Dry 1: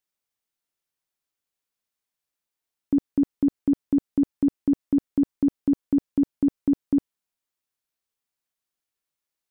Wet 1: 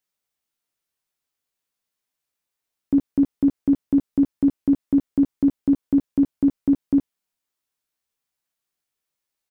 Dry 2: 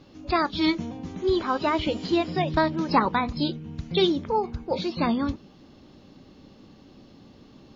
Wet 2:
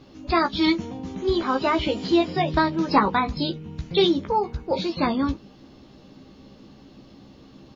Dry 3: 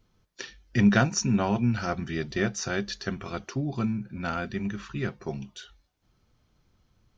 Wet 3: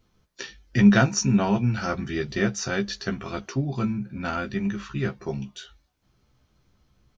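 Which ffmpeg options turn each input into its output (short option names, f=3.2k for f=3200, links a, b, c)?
-filter_complex "[0:a]asplit=2[a][b];[b]adelay=15,volume=-5.5dB[c];[a][c]amix=inputs=2:normalize=0,volume=1.5dB"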